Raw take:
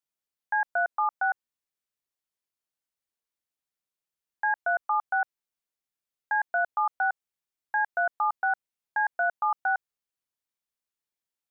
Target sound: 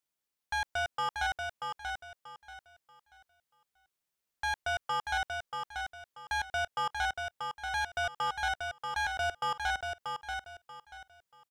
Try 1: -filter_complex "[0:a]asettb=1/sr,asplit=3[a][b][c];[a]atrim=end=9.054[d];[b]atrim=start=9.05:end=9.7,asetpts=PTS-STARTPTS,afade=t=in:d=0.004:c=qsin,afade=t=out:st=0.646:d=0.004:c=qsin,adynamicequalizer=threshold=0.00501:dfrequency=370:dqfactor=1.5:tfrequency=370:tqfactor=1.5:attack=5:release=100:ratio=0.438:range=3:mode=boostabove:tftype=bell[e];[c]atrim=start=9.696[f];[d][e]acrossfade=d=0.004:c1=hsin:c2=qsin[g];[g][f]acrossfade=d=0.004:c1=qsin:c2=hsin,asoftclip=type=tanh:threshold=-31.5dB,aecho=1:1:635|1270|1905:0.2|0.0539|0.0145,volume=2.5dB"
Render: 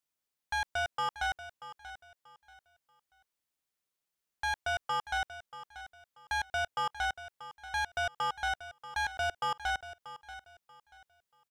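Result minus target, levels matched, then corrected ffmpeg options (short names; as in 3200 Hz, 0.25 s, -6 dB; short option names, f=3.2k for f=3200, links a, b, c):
echo-to-direct -9 dB
-filter_complex "[0:a]asettb=1/sr,asplit=3[a][b][c];[a]atrim=end=9.054[d];[b]atrim=start=9.05:end=9.7,asetpts=PTS-STARTPTS,afade=t=in:d=0.004:c=qsin,afade=t=out:st=0.646:d=0.004:c=qsin,adynamicequalizer=threshold=0.00501:dfrequency=370:dqfactor=1.5:tfrequency=370:tqfactor=1.5:attack=5:release=100:ratio=0.438:range=3:mode=boostabove:tftype=bell[e];[c]atrim=start=9.696[f];[d][e]acrossfade=d=0.004:c1=hsin:c2=qsin[g];[g][f]acrossfade=d=0.004:c1=qsin:c2=hsin,asoftclip=type=tanh:threshold=-31.5dB,aecho=1:1:635|1270|1905|2540:0.562|0.152|0.041|0.0111,volume=2.5dB"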